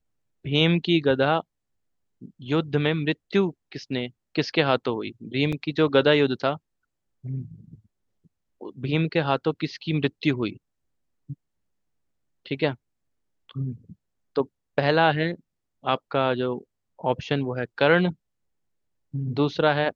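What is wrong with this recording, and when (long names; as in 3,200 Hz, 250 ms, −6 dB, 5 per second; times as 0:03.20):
0:05.52–0:05.53: drop-out 5.7 ms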